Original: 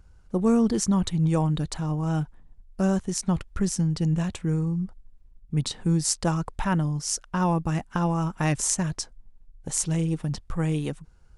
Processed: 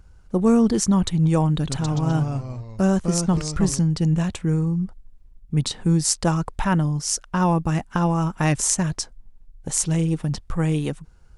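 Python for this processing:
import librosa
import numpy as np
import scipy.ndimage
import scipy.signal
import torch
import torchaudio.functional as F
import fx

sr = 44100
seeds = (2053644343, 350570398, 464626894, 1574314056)

y = fx.echo_pitch(x, sr, ms=101, semitones=-2, count=3, db_per_echo=-6.0, at=(1.55, 3.79))
y = F.gain(torch.from_numpy(y), 4.0).numpy()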